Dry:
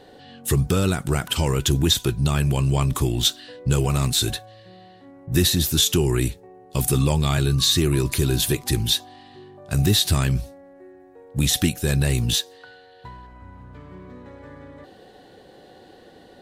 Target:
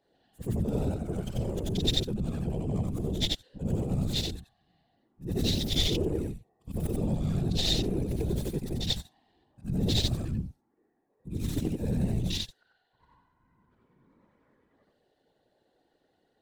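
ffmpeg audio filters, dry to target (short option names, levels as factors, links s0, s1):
-filter_complex "[0:a]afftfilt=real='re':imag='-im':win_size=8192:overlap=0.75,acrossover=split=880[s0][s1];[s0]asoftclip=type=hard:threshold=0.0794[s2];[s1]aeval=exprs='0.266*(cos(1*acos(clip(val(0)/0.266,-1,1)))-cos(1*PI/2))+0.0422*(cos(2*acos(clip(val(0)/0.266,-1,1)))-cos(2*PI/2))+0.119*(cos(4*acos(clip(val(0)/0.266,-1,1)))-cos(4*PI/2))+0.00473*(cos(6*acos(clip(val(0)/0.266,-1,1)))-cos(6*PI/2))+0.0211*(cos(8*acos(clip(val(0)/0.266,-1,1)))-cos(8*PI/2))':c=same[s3];[s2][s3]amix=inputs=2:normalize=0,afwtdn=0.0447,afftfilt=real='hypot(re,im)*cos(2*PI*random(0))':imag='hypot(re,im)*sin(2*PI*random(1))':win_size=512:overlap=0.75,volume=1.41"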